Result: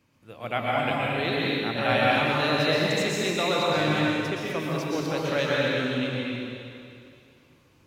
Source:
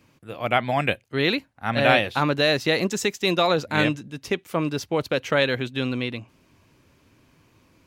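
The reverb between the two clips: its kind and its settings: plate-style reverb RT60 2.5 s, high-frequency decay 0.95×, pre-delay 105 ms, DRR -5.5 dB; trim -8.5 dB

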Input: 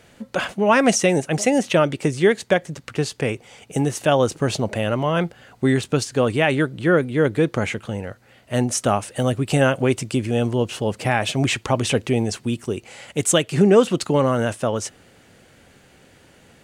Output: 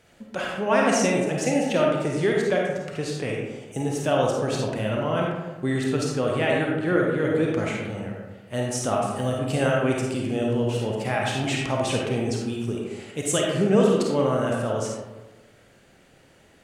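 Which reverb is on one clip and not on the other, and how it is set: algorithmic reverb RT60 1.2 s, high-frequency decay 0.45×, pre-delay 10 ms, DRR -2 dB; trim -8 dB

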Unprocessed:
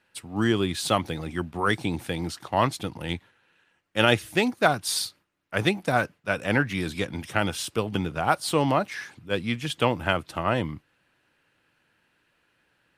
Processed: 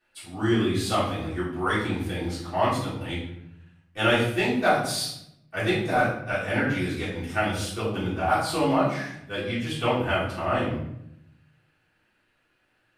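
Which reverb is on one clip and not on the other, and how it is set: simulated room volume 180 m³, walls mixed, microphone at 3.5 m; trim -12 dB

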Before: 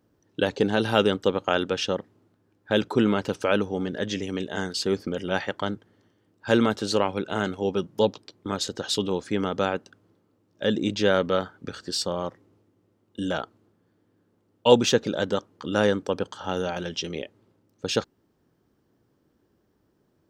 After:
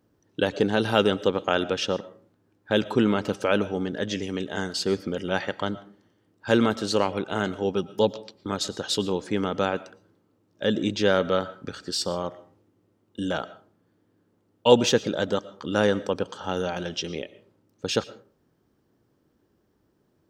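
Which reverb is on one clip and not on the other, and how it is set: algorithmic reverb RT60 0.4 s, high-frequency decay 0.55×, pre-delay 75 ms, DRR 17.5 dB

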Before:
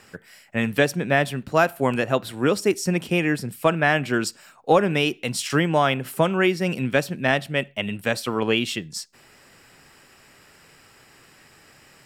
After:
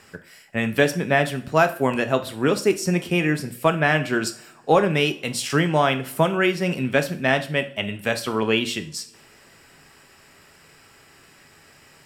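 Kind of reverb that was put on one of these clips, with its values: two-slope reverb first 0.43 s, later 2.7 s, from -27 dB, DRR 7.5 dB

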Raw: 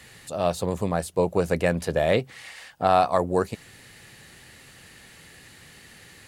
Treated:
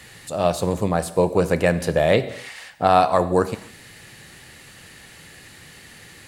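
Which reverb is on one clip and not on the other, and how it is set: gated-style reverb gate 310 ms falling, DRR 11.5 dB; trim +4 dB

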